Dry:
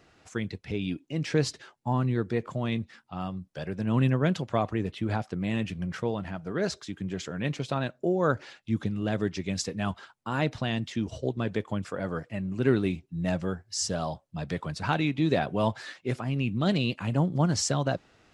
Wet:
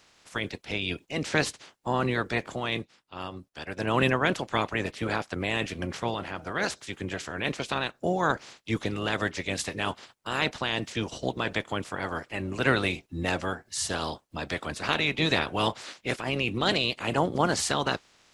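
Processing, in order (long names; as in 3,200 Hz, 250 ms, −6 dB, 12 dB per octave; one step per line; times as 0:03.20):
ceiling on every frequency bin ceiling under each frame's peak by 21 dB
0:02.55–0:03.77: expander for the loud parts 1.5 to 1, over −44 dBFS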